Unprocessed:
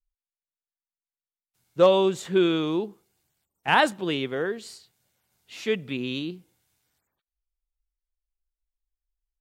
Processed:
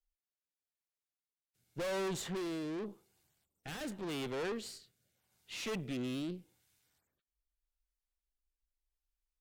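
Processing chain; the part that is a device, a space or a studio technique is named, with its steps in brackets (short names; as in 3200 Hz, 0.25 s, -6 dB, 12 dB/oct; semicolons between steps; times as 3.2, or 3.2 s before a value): overdriven rotary cabinet (tube stage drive 36 dB, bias 0.6; rotary speaker horn 0.85 Hz); gain +1.5 dB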